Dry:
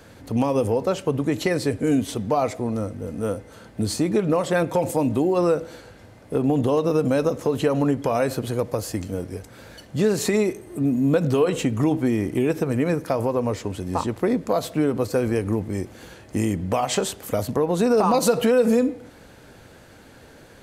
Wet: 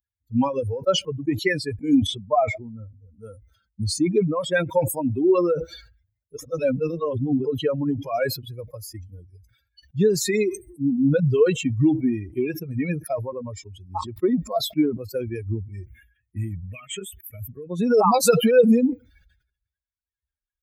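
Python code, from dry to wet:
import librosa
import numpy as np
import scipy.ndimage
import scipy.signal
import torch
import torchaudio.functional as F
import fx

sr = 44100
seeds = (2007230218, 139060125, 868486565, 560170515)

y = fx.high_shelf(x, sr, hz=4800.0, db=-8.0, at=(2.01, 2.94))
y = fx.fixed_phaser(y, sr, hz=2000.0, stages=4, at=(15.84, 17.69), fade=0.02)
y = fx.edit(y, sr, fx.reverse_span(start_s=6.37, length_s=1.08), tone=tone)
y = fx.bin_expand(y, sr, power=3.0)
y = scipy.signal.sosfilt(scipy.signal.butter(2, 86.0, 'highpass', fs=sr, output='sos'), y)
y = fx.sustainer(y, sr, db_per_s=96.0)
y = y * 10.0 ** (7.0 / 20.0)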